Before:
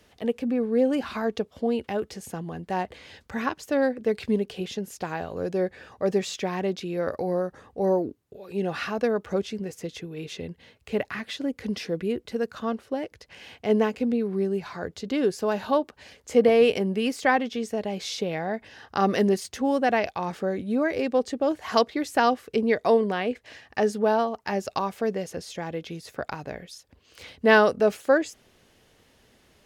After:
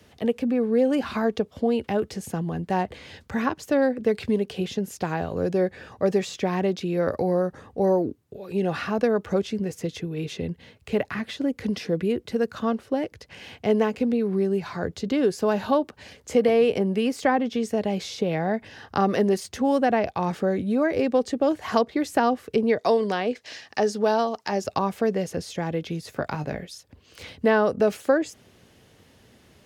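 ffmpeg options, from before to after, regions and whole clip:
ffmpeg -i in.wav -filter_complex "[0:a]asettb=1/sr,asplit=3[link_01][link_02][link_03];[link_01]atrim=end=22.784[link_04];[link_02]atrim=start=22.78:end=24.64,asetpts=PTS-STARTPTS,afade=type=in:duration=0.004:curve=qsin,afade=type=out:start_time=1.856:duration=0.004:curve=qsin,highpass=frequency=360:poles=1,equalizer=frequency=5200:width=0.96:gain=10.5[link_05];[link_03]atrim=start=24.636[link_06];[link_04][link_05]acrossfade=duration=0.004:curve1=hsin:curve2=qsin[link_07];[link_07][link_06]acrossfade=duration=0.004:curve1=qsin:curve2=hsin,asettb=1/sr,asplit=3[link_08][link_09][link_10];[link_08]atrim=end=26.144[link_11];[link_09]atrim=start=26.14:end=26.66,asetpts=PTS-STARTPTS,afade=type=in:duration=0.004:curve=qsin,afade=type=out:start_time=0.516:duration=0.004:curve=qsin,deesser=0.9,asplit=2[link_12][link_13];[link_13]adelay=20,volume=-8dB[link_14];[link_12][link_14]amix=inputs=2:normalize=0,atrim=end_sample=22932[link_15];[link_10]atrim=start=26.656[link_16];[link_11][link_15]acrossfade=duration=0.004:curve1=hsin:curve2=qsin[link_17];[link_17][link_16]acrossfade=duration=0.004:curve1=qsin:curve2=hsin,highpass=82,lowshelf=frequency=220:gain=9,acrossover=split=410|1400[link_18][link_19][link_20];[link_18]acompressor=threshold=-27dB:ratio=4[link_21];[link_19]acompressor=threshold=-22dB:ratio=4[link_22];[link_20]acompressor=threshold=-37dB:ratio=4[link_23];[link_21][link_22][link_23]amix=inputs=3:normalize=0,volume=2.5dB" out.wav

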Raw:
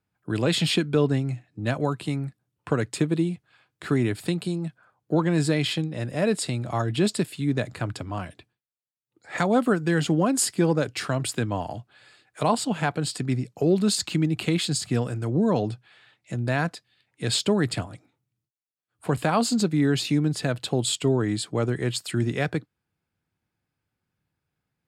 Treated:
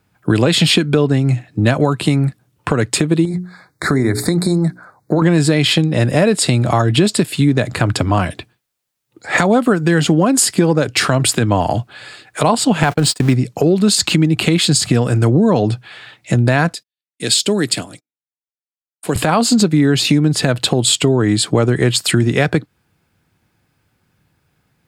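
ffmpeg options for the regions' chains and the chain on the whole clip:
ffmpeg -i in.wav -filter_complex "[0:a]asettb=1/sr,asplit=3[link_01][link_02][link_03];[link_01]atrim=end=3.254[link_04];[link_02]atrim=start=3.25:end=5.22,asetpts=PTS-STARTPTS,afade=type=in:duration=0.004:curve=qsin,afade=type=out:start_time=1.966:duration=0.004:curve=qsin,bandreject=frequency=60:width_type=h:width=6,bandreject=frequency=120:width_type=h:width=6,bandreject=frequency=180:width_type=h:width=6,bandreject=frequency=240:width_type=h:width=6,bandreject=frequency=300:width_type=h:width=6,bandreject=frequency=360:width_type=h:width=6,bandreject=frequency=420:width_type=h:width=6,acompressor=threshold=-30dB:ratio=2.5:attack=3.2:release=140:knee=1:detection=peak,asuperstop=centerf=2900:order=8:qfactor=1.9[link_05];[link_03]atrim=start=5.216[link_06];[link_04][link_05]acrossfade=duration=0.004:curve1=hsin:curve2=qsin[link_07];[link_07][link_06]acrossfade=duration=0.004:curve1=qsin:curve2=hsin,asettb=1/sr,asplit=3[link_08][link_09][link_10];[link_08]atrim=end=12.834[link_11];[link_09]atrim=start=12.83:end=13.34,asetpts=PTS-STARTPTS,afade=type=in:duration=0.004:curve=qsin,afade=type=out:start_time=0.506:duration=0.004:curve=qsin,aeval=exprs='val(0)+0.5*0.0158*sgn(val(0))':channel_layout=same,agate=range=-37dB:threshold=-31dB:ratio=16:release=100:detection=peak[link_12];[link_10]atrim=start=13.336[link_13];[link_11][link_12]acrossfade=duration=0.004:curve1=hsin:curve2=qsin[link_14];[link_14][link_13]acrossfade=duration=0.004:curve1=qsin:curve2=hsin,asettb=1/sr,asplit=3[link_15][link_16][link_17];[link_15]atrim=end=16.734[link_18];[link_16]atrim=start=16.73:end=19.16,asetpts=PTS-STARTPTS,afade=type=in:duration=0.004:curve=qsin,afade=type=out:start_time=2.426:duration=0.004:curve=qsin,highpass=310,agate=range=-41dB:threshold=-57dB:ratio=16:release=100:detection=peak,equalizer=frequency=930:width=0.41:gain=-15[link_19];[link_17]atrim=start=19.156[link_20];[link_18][link_19]acrossfade=duration=0.004:curve1=hsin:curve2=qsin[link_21];[link_21][link_20]acrossfade=duration=0.004:curve1=qsin:curve2=hsin,acompressor=threshold=-28dB:ratio=6,alimiter=level_in=19.5dB:limit=-1dB:release=50:level=0:latency=1,volume=-1dB" out.wav

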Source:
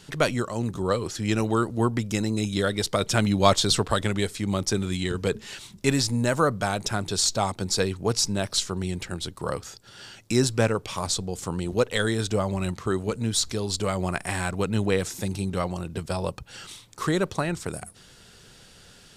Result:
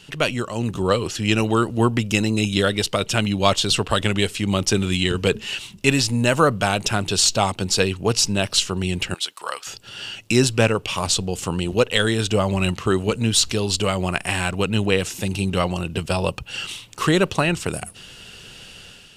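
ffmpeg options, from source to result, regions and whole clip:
ffmpeg -i in.wav -filter_complex "[0:a]asettb=1/sr,asplit=3[link_01][link_02][link_03];[link_01]atrim=end=9.144[link_04];[link_02]atrim=start=9.14:end=9.67,asetpts=PTS-STARTPTS,afade=type=in:duration=0.004:curve=qsin,afade=type=out:start_time=0.526:duration=0.004:curve=qsin,highpass=1000,bandreject=frequency=2800:width=20[link_05];[link_03]atrim=start=9.666[link_06];[link_04][link_05]acrossfade=duration=0.004:curve1=hsin:curve2=qsin[link_07];[link_07][link_06]acrossfade=duration=0.004:curve1=qsin:curve2=hsin,equalizer=frequency=2800:width=4.3:gain=13.5,dynaudnorm=framelen=100:gausssize=7:maxgain=6.5dB" out.wav

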